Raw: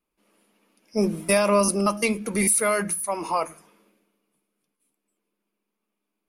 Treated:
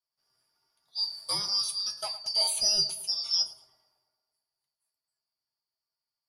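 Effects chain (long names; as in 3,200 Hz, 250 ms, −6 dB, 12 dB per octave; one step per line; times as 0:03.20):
band-splitting scrambler in four parts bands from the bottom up 2341
0:02.24–0:03.42: flat-topped bell 4,000 Hz +8.5 dB
mains-hum notches 60/120/180 Hz
tuned comb filter 130 Hz, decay 0.22 s, harmonics odd, mix 80%
tape delay 110 ms, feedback 69%, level −13 dB, low-pass 2,000 Hz
level −1 dB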